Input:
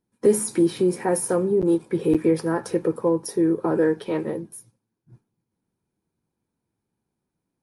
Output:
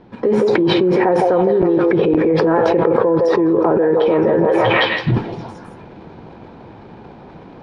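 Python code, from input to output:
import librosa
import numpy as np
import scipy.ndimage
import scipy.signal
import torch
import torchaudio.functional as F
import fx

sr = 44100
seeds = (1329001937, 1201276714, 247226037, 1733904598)

p1 = fx.transient(x, sr, attack_db=4, sustain_db=8)
p2 = fx.peak_eq(p1, sr, hz=690.0, db=7.5, octaves=1.7)
p3 = p2 + fx.echo_stepped(p2, sr, ms=161, hz=560.0, octaves=0.7, feedback_pct=70, wet_db=-5.0, dry=0)
p4 = fx.rider(p3, sr, range_db=10, speed_s=0.5)
p5 = scipy.signal.sosfilt(scipy.signal.butter(4, 3700.0, 'lowpass', fs=sr, output='sos'), p4)
p6 = fx.env_flatten(p5, sr, amount_pct=100)
y = F.gain(torch.from_numpy(p6), -6.5).numpy()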